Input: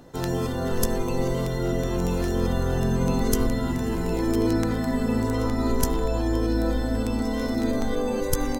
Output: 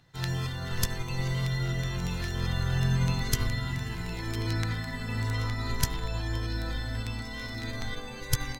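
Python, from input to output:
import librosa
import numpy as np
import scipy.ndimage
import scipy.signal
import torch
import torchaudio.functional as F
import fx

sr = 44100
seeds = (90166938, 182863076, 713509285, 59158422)

y = fx.graphic_eq(x, sr, hz=(125, 250, 500, 2000, 4000), db=(11, -9, -8, 9, 9))
y = fx.upward_expand(y, sr, threshold_db=-36.0, expansion=1.5)
y = F.gain(torch.from_numpy(y), -4.5).numpy()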